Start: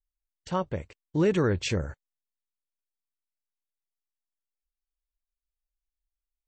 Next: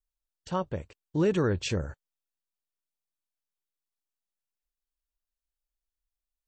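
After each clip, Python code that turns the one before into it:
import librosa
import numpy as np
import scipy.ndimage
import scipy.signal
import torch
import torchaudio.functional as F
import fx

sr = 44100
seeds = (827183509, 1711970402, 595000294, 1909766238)

y = fx.peak_eq(x, sr, hz=2100.0, db=-7.0, octaves=0.24)
y = y * 10.0 ** (-1.5 / 20.0)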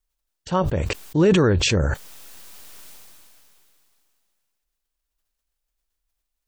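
y = fx.sustainer(x, sr, db_per_s=21.0)
y = y * 10.0 ** (8.0 / 20.0)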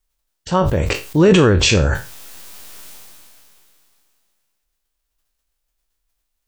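y = fx.spec_trails(x, sr, decay_s=0.31)
y = y * 10.0 ** (4.5 / 20.0)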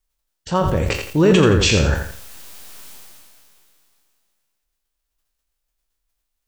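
y = fx.echo_crushed(x, sr, ms=85, feedback_pct=35, bits=7, wet_db=-6.5)
y = y * 10.0 ** (-2.5 / 20.0)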